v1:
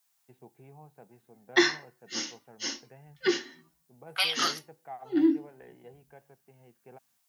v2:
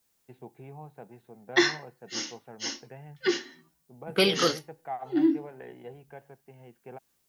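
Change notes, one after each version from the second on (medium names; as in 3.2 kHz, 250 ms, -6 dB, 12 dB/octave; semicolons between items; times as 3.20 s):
first voice +7.0 dB; second voice: remove Chebyshev high-pass 690 Hz, order 5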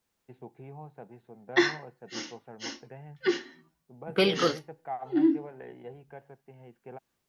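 master: add treble shelf 4.8 kHz -12 dB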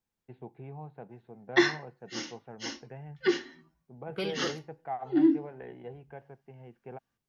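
second voice -11.0 dB; master: add bass shelf 78 Hz +10.5 dB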